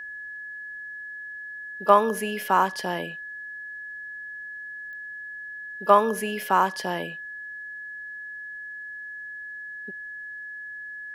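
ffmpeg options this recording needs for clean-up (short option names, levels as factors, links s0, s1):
-af "adeclick=t=4,bandreject=f=1700:w=30,agate=range=0.0891:threshold=0.0316"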